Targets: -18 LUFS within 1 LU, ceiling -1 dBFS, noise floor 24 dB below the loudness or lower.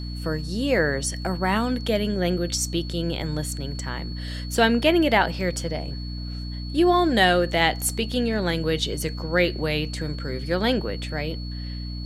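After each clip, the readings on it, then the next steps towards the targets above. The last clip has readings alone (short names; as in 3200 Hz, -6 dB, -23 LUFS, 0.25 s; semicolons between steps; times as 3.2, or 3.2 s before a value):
hum 60 Hz; harmonics up to 300 Hz; hum level -29 dBFS; steady tone 4400 Hz; tone level -40 dBFS; loudness -24.0 LUFS; peak -3.5 dBFS; loudness target -18.0 LUFS
-> de-hum 60 Hz, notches 5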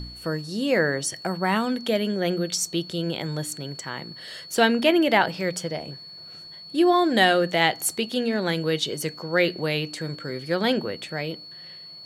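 hum none; steady tone 4400 Hz; tone level -40 dBFS
-> notch 4400 Hz, Q 30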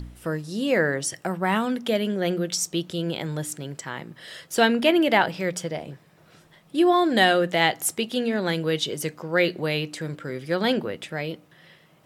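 steady tone none; loudness -24.0 LUFS; peak -3.5 dBFS; loudness target -18.0 LUFS
-> gain +6 dB; limiter -1 dBFS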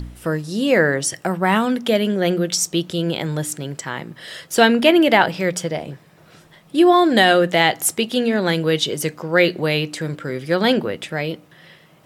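loudness -18.5 LUFS; peak -1.0 dBFS; noise floor -50 dBFS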